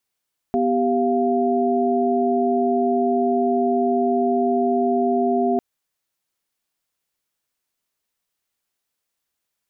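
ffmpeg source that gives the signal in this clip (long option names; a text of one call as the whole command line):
ffmpeg -f lavfi -i "aevalsrc='0.0891*(sin(2*PI*246.94*t)+sin(2*PI*392*t)+sin(2*PI*698.46*t))':duration=5.05:sample_rate=44100" out.wav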